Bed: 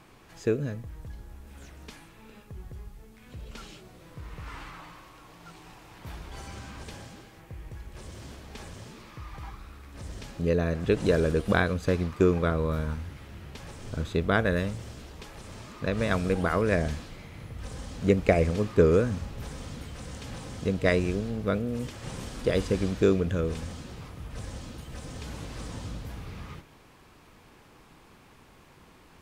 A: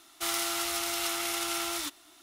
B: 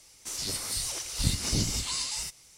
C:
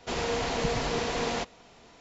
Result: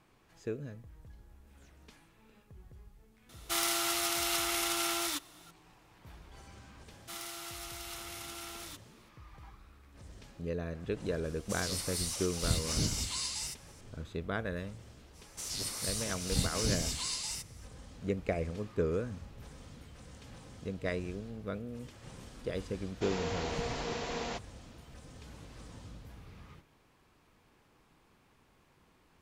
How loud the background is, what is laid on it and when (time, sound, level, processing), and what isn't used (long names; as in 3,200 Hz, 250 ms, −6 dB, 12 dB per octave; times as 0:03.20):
bed −11.5 dB
0:03.29: mix in A −0.5 dB
0:06.87: mix in A −12.5 dB
0:11.24: mix in B −4.5 dB
0:15.12: mix in B −4.5 dB, fades 0.05 s
0:22.94: mix in C −7.5 dB